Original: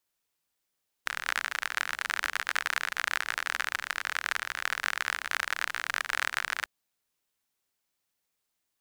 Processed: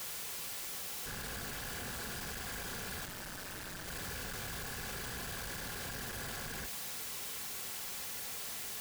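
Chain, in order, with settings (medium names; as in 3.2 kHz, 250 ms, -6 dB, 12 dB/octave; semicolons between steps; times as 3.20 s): one-bit comparator; comb of notches 310 Hz; 3.05–3.88 s: ring modulator 96 Hz; trim -5.5 dB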